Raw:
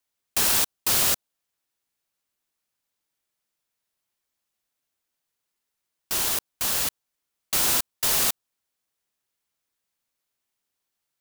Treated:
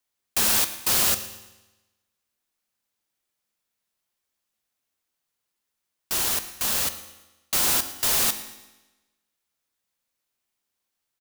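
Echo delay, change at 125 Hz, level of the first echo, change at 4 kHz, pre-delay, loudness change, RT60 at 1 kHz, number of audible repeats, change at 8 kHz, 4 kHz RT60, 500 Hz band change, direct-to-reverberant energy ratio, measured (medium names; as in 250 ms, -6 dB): 114 ms, 0.0 dB, -19.5 dB, +0.5 dB, 4 ms, +0.5 dB, 1.1 s, 3, +0.5 dB, 1.0 s, +0.5 dB, 9.5 dB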